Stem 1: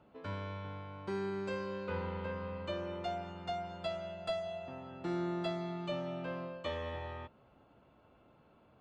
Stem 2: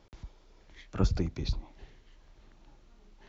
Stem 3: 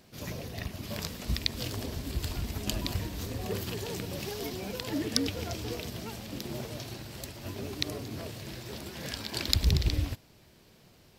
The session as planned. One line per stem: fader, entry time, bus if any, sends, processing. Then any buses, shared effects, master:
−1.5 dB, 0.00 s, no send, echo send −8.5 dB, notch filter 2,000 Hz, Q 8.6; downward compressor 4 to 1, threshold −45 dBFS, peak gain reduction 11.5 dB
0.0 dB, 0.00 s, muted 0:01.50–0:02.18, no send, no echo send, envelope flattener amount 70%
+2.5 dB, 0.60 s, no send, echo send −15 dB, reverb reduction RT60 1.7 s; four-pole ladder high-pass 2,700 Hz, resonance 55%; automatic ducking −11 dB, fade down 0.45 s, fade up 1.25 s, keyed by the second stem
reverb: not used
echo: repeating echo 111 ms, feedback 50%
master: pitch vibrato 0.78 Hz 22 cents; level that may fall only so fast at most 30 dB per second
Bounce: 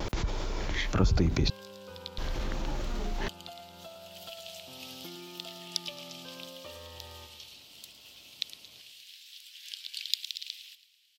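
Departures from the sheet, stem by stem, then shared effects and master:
stem 3: missing reverb reduction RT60 1.7 s
master: missing level that may fall only so fast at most 30 dB per second

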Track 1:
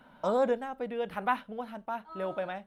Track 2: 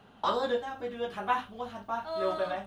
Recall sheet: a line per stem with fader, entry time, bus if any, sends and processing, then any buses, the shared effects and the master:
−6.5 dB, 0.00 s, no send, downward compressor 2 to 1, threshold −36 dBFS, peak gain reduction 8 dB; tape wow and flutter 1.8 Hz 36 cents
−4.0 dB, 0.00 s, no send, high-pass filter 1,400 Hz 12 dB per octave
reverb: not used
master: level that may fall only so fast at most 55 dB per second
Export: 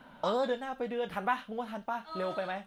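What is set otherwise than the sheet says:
stem 1 −6.5 dB → +3.0 dB
master: missing level that may fall only so fast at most 55 dB per second

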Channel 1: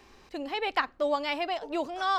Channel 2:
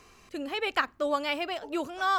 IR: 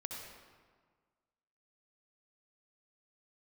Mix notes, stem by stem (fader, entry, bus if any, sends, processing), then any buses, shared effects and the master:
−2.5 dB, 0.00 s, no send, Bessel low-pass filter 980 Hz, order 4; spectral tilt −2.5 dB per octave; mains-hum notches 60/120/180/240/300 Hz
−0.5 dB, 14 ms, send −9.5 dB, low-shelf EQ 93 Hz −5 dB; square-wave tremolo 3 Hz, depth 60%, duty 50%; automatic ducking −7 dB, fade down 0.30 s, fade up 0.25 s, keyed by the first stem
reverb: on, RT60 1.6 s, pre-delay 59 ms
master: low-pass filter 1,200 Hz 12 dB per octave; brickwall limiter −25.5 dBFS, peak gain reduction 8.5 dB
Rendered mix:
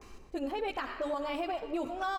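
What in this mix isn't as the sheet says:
stem 2: polarity flipped
master: missing low-pass filter 1,200 Hz 12 dB per octave

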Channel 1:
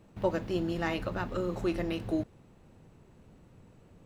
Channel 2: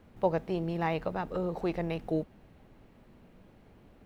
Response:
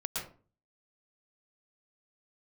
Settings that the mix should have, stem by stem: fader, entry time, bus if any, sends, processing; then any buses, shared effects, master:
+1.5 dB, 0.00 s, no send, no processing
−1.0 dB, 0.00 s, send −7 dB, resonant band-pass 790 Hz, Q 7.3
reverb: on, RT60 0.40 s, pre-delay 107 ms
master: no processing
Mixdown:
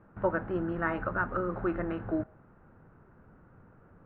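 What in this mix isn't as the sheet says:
stem 1 +1.5 dB → +10.0 dB
master: extra transistor ladder low-pass 1,600 Hz, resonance 65%

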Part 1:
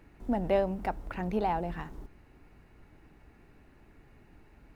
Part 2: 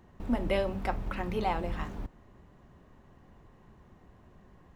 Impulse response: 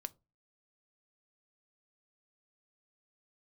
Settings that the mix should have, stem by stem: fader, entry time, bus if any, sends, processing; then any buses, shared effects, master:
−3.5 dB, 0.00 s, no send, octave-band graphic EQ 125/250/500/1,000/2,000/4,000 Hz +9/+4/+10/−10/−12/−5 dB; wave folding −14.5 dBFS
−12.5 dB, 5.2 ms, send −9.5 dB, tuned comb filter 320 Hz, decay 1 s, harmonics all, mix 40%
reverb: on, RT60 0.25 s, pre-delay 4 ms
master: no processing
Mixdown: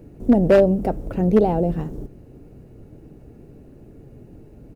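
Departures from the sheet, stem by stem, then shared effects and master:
stem 1 −3.5 dB → +8.5 dB
stem 2: polarity flipped

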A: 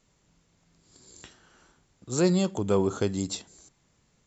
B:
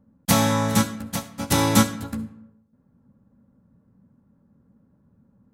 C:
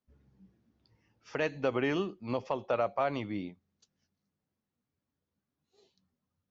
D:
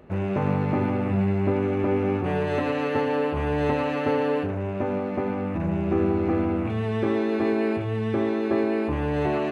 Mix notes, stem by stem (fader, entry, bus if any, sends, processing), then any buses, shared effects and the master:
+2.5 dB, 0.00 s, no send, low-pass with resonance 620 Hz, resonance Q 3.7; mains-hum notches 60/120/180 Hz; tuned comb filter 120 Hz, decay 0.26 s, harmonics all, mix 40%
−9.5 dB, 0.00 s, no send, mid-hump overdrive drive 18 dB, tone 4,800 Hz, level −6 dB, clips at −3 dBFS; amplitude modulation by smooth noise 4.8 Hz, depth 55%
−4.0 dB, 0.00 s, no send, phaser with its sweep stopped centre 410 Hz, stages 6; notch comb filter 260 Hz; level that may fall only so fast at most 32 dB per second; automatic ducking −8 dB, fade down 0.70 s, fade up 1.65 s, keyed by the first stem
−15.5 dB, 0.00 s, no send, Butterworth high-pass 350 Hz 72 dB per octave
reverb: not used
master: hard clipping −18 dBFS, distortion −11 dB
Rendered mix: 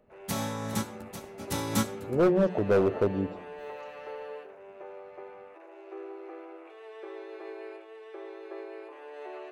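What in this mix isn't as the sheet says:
stem B: missing mid-hump overdrive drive 18 dB, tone 4,800 Hz, level −6 dB, clips at −3 dBFS
stem C −4.0 dB → −10.5 dB

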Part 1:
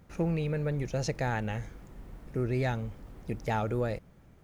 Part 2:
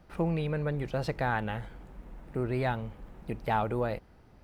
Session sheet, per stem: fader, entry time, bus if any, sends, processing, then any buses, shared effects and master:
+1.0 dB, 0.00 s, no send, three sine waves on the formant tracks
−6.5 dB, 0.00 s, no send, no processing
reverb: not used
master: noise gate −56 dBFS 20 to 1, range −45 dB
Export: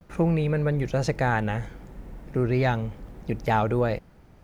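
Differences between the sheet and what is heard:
stem 1: missing three sine waves on the formant tracks
stem 2 −6.5 dB → +1.0 dB

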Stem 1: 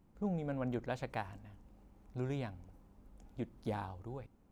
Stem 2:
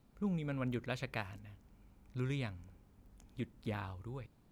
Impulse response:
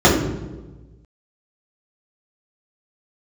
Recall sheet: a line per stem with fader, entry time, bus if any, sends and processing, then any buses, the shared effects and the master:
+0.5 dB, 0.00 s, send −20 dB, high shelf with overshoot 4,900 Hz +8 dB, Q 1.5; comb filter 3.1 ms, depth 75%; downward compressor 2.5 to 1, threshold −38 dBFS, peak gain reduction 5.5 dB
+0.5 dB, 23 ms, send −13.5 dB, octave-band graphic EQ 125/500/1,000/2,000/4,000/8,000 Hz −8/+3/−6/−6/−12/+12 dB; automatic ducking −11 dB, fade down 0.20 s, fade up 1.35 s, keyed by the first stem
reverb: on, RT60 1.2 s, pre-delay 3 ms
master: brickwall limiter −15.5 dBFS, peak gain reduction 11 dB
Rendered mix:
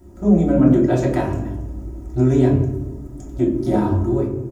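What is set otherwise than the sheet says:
stem 1 +0.5 dB → +9.5 dB
master: missing brickwall limiter −15.5 dBFS, peak gain reduction 11 dB

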